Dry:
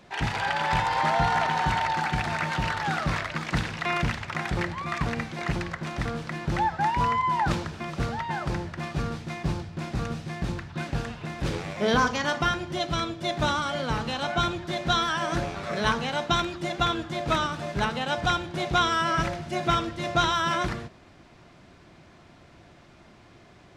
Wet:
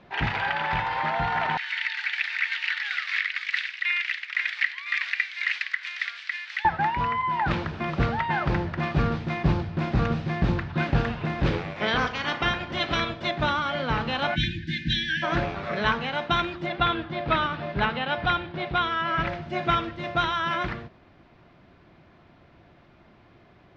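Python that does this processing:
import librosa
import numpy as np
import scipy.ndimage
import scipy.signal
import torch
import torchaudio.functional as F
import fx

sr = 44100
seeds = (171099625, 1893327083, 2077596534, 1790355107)

y = fx.ellip_bandpass(x, sr, low_hz=1900.0, high_hz=9100.0, order=3, stop_db=80, at=(1.57, 6.65))
y = fx.spec_clip(y, sr, under_db=13, at=(11.75, 13.28), fade=0.02)
y = fx.brickwall_bandstop(y, sr, low_hz=330.0, high_hz=1500.0, at=(14.34, 15.22), fade=0.02)
y = fx.lowpass(y, sr, hz=4900.0, slope=24, at=(16.66, 19.27))
y = scipy.signal.sosfilt(scipy.signal.bessel(4, 3100.0, 'lowpass', norm='mag', fs=sr, output='sos'), y)
y = fx.dynamic_eq(y, sr, hz=2300.0, q=0.75, threshold_db=-39.0, ratio=4.0, max_db=6)
y = fx.rider(y, sr, range_db=10, speed_s=0.5)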